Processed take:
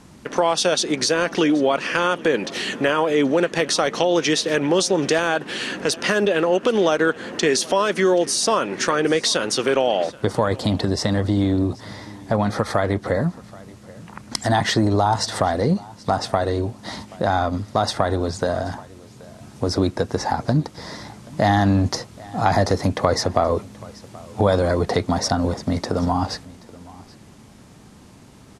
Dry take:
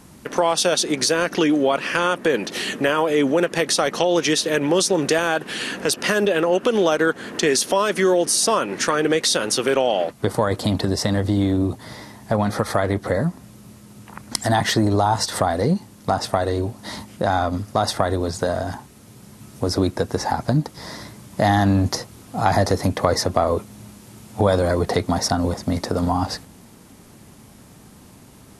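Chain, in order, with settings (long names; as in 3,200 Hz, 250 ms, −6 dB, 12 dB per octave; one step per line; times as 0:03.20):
low-pass filter 7,600 Hz 12 dB per octave
single-tap delay 779 ms −22 dB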